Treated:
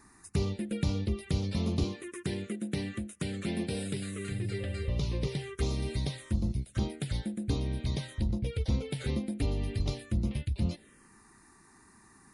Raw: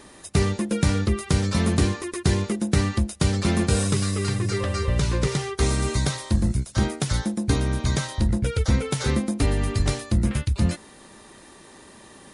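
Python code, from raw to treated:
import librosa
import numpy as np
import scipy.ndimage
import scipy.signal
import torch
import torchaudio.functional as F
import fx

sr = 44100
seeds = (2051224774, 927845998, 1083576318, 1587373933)

y = fx.highpass(x, sr, hz=150.0, slope=12, at=(1.84, 4.32))
y = fx.env_phaser(y, sr, low_hz=530.0, high_hz=1700.0, full_db=-17.0)
y = F.gain(torch.from_numpy(y), -8.5).numpy()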